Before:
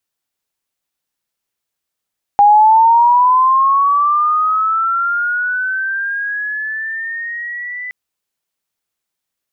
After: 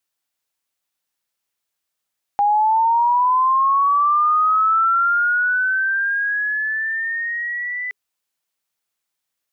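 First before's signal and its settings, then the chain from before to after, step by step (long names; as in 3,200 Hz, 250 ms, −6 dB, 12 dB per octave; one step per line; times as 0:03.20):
glide linear 810 Hz → 2,000 Hz −4.5 dBFS → −23 dBFS 5.52 s
low-shelf EQ 390 Hz −6 dB
notch filter 410 Hz, Q 12
brickwall limiter −13 dBFS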